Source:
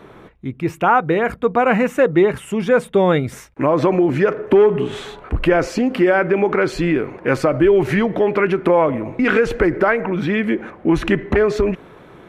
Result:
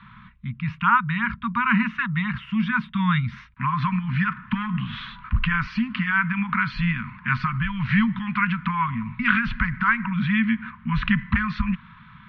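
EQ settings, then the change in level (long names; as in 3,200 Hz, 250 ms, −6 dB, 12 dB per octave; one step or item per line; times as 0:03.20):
Chebyshev band-stop filter 230–980 Hz, order 5
inverse Chebyshev low-pass filter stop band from 7,200 Hz, stop band 40 dB
0.0 dB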